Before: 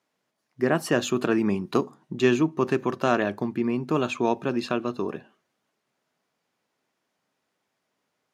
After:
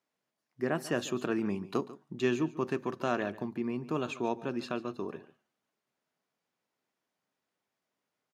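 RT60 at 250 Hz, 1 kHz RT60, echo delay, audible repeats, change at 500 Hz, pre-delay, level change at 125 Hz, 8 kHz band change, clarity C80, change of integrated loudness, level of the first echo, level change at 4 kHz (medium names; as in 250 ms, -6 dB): no reverb, no reverb, 143 ms, 1, -8.5 dB, no reverb, -8.5 dB, -8.5 dB, no reverb, -8.5 dB, -17.0 dB, -8.5 dB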